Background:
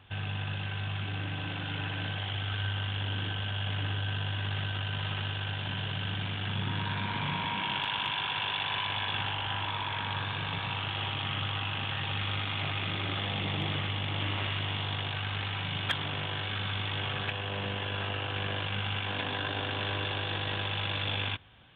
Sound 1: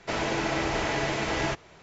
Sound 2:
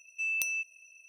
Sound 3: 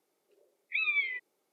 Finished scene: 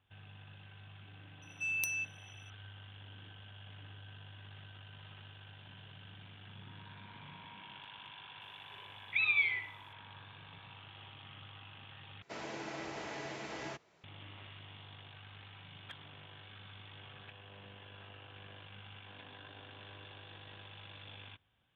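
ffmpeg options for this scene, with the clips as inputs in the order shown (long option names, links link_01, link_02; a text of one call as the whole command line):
ffmpeg -i bed.wav -i cue0.wav -i cue1.wav -i cue2.wav -filter_complex "[0:a]volume=-19.5dB[link_01];[3:a]aecho=1:1:69|138|207|276|345:0.355|0.145|0.0596|0.0245|0.01[link_02];[1:a]highpass=120[link_03];[link_01]asplit=2[link_04][link_05];[link_04]atrim=end=12.224[link_06];[link_03]atrim=end=1.82,asetpts=PTS-STARTPTS,volume=-15dB[link_07];[link_05]atrim=start=14.036[link_08];[2:a]atrim=end=1.08,asetpts=PTS-STARTPTS,volume=-4dB,afade=type=in:duration=0.004:curve=hsin,afade=type=out:start_time=1.076:duration=0.004:curve=hsin,adelay=1420[link_09];[link_02]atrim=end=1.52,asetpts=PTS-STARTPTS,volume=-0.5dB,afade=type=in:duration=0.004:curve=hsin,afade=type=out:start_time=1.516:duration=0.004:curve=hsin,adelay=8410[link_10];[link_06][link_07]acrossfade=duration=0.004:curve1=hsin:curve2=hsin[link_11];[link_11][link_08]acrossfade=duration=0.004:curve1=hsin:curve2=hsin[link_12];[link_12][link_09][link_10]amix=inputs=3:normalize=0" out.wav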